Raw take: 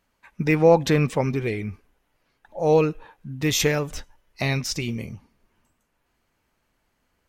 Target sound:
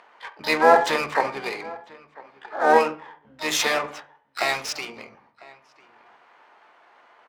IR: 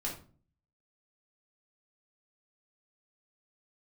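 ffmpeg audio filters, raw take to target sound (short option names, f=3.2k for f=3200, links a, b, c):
-filter_complex "[0:a]agate=range=-12dB:threshold=-52dB:ratio=16:detection=peak,acompressor=mode=upward:threshold=-32dB:ratio=2.5,highpass=f=830:t=q:w=1.7,aecho=1:1:999:0.0841,asplit=2[a][b];[1:a]atrim=start_sample=2205,lowpass=2.2k[c];[b][c]afir=irnorm=-1:irlink=0,volume=-4dB[d];[a][d]amix=inputs=2:normalize=0,asplit=4[e][f][g][h];[f]asetrate=22050,aresample=44100,atempo=2,volume=-14dB[i];[g]asetrate=52444,aresample=44100,atempo=0.840896,volume=-16dB[j];[h]asetrate=88200,aresample=44100,atempo=0.5,volume=-6dB[k];[e][i][j][k]amix=inputs=4:normalize=0,adynamicsmooth=sensitivity=5.5:basefreq=2.6k"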